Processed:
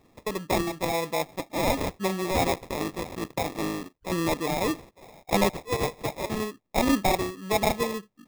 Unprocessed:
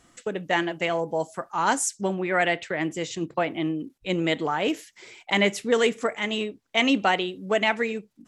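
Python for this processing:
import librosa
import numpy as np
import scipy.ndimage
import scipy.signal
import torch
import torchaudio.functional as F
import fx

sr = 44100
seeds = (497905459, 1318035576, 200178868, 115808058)

y = fx.cycle_switch(x, sr, every=3, mode='muted', at=(2.53, 4.12))
y = fx.highpass(y, sr, hz=540.0, slope=24, at=(5.49, 6.3))
y = fx.sample_hold(y, sr, seeds[0], rate_hz=1500.0, jitter_pct=0)
y = F.gain(torch.from_numpy(y), -1.5).numpy()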